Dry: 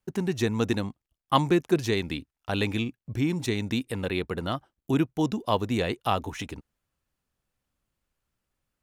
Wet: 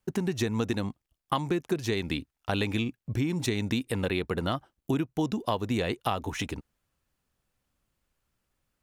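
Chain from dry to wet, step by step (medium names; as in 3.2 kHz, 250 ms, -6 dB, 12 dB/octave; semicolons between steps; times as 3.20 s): compression 10:1, threshold -27 dBFS, peak gain reduction 12.5 dB; trim +3 dB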